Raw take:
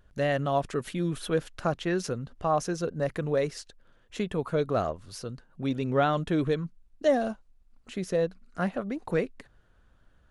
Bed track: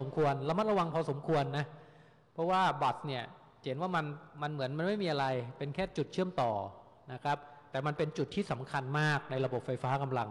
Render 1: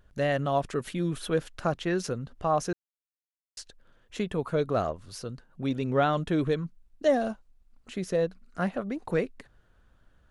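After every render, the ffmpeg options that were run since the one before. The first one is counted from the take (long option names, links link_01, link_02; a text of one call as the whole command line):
ffmpeg -i in.wav -filter_complex "[0:a]asplit=3[link_01][link_02][link_03];[link_01]atrim=end=2.73,asetpts=PTS-STARTPTS,afade=type=out:start_time=2.726:duration=0.004:curve=hsin[link_04];[link_02]atrim=start=2.73:end=3.57,asetpts=PTS-STARTPTS,volume=0[link_05];[link_03]atrim=start=3.57,asetpts=PTS-STARTPTS,afade=type=in:duration=0.004:curve=hsin[link_06];[link_04][link_05][link_06]concat=n=3:v=0:a=1" out.wav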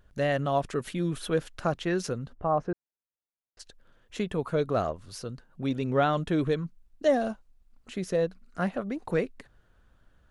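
ffmpeg -i in.wav -filter_complex "[0:a]asplit=3[link_01][link_02][link_03];[link_01]afade=type=out:start_time=2.33:duration=0.02[link_04];[link_02]lowpass=1300,afade=type=in:start_time=2.33:duration=0.02,afade=type=out:start_time=3.59:duration=0.02[link_05];[link_03]afade=type=in:start_time=3.59:duration=0.02[link_06];[link_04][link_05][link_06]amix=inputs=3:normalize=0" out.wav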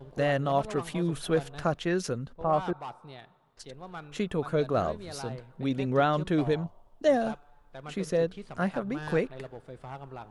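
ffmpeg -i in.wav -i bed.wav -filter_complex "[1:a]volume=-9dB[link_01];[0:a][link_01]amix=inputs=2:normalize=0" out.wav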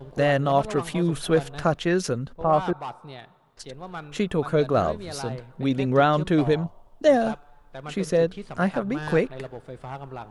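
ffmpeg -i in.wav -af "volume=5.5dB" out.wav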